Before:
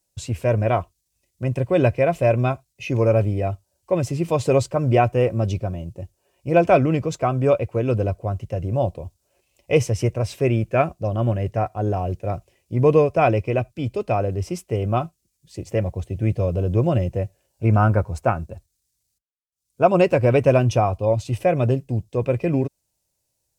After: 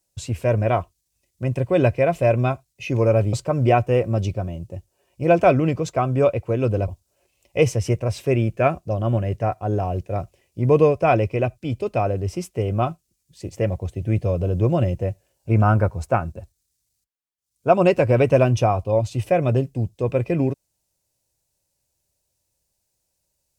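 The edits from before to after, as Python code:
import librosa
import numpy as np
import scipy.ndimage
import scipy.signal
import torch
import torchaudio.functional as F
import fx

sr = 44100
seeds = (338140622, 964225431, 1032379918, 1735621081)

y = fx.edit(x, sr, fx.cut(start_s=3.33, length_s=1.26),
    fx.cut(start_s=8.14, length_s=0.88), tone=tone)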